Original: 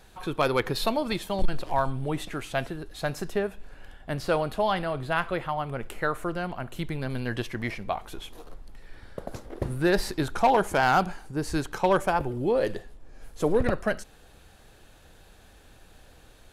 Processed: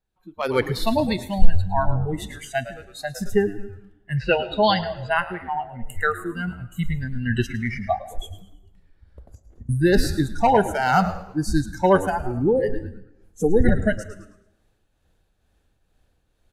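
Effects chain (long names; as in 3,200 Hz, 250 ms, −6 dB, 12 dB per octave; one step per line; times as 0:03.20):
noise reduction from a noise print of the clip's start 25 dB
0:08.26–0:09.69: downward compressor 16 to 1, threshold −53 dBFS, peak gain reduction 25.5 dB
echo with shifted repeats 108 ms, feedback 38%, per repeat −100 Hz, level −14.5 dB
shaped tremolo triangle 2.2 Hz, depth 50%
0:04.16–0:05.07: low-pass with resonance 2,200 Hz → 6,900 Hz, resonance Q 10
automatic gain control gain up to 15 dB
low-shelf EQ 340 Hz +6.5 dB
dense smooth reverb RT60 0.88 s, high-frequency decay 0.85×, pre-delay 90 ms, DRR 17 dB
level −6 dB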